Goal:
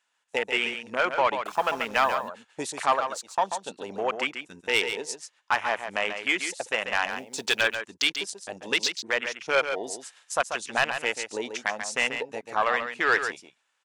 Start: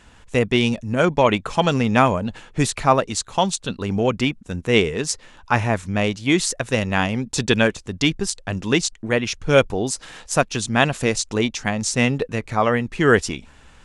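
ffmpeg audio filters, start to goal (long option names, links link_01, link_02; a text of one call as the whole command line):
ffmpeg -i in.wav -filter_complex "[0:a]asettb=1/sr,asplit=3[link_01][link_02][link_03];[link_01]atrim=end=2.954[link_04];[link_02]atrim=start=2.95:end=3.39,asetpts=PTS-STARTPTS,afade=type=in:duration=0.004:curve=qsin,afade=type=out:start_time=0.436:duration=0.004:curve=qsin,aeval=exprs='if(lt(val(0),0),0.708*val(0),val(0))':channel_layout=same[link_05];[link_03]atrim=start=3.386[link_06];[link_04][link_05]acrossfade=duration=0.004:curve1=hsin:curve2=qsin[link_07];[link_07][link_06]acrossfade=duration=0.004:curve1=qsin:curve2=hsin,afwtdn=0.0562,highpass=820,agate=range=-11dB:threshold=-55dB:ratio=16:detection=peak,highshelf=frequency=3900:gain=4,asplit=2[link_08][link_09];[link_09]acompressor=threshold=-34dB:ratio=6,volume=2dB[link_10];[link_08][link_10]amix=inputs=2:normalize=0,asplit=3[link_11][link_12][link_13];[link_11]afade=type=out:start_time=7.1:duration=0.02[link_14];[link_12]acrusher=bits=5:mode=log:mix=0:aa=0.000001,afade=type=in:start_time=7.1:duration=0.02,afade=type=out:start_time=7.61:duration=0.02[link_15];[link_13]afade=type=in:start_time=7.61:duration=0.02[link_16];[link_14][link_15][link_16]amix=inputs=3:normalize=0,asoftclip=type=tanh:threshold=-10.5dB,asettb=1/sr,asplit=3[link_17][link_18][link_19];[link_17]atrim=end=1.424[link_20];[link_18]atrim=start=1.42:end=2.15,asetpts=PTS-STARTPTS,afade=type=in:duration=0.004:curve=qsin,afade=type=out:start_time=0.726:duration=0.004:curve=qsin,acrusher=bits=6:mix=0:aa=0.5[link_21];[link_19]atrim=start=2.146[link_22];[link_20][link_21]acrossfade=duration=0.004:curve1=hsin:curve2=qsin[link_23];[link_23][link_22]acrossfade=duration=0.004:curve1=qsin:curve2=hsin,asplit=2[link_24][link_25];[link_25]aecho=0:1:138:0.398[link_26];[link_24][link_26]amix=inputs=2:normalize=0,volume=-2dB" out.wav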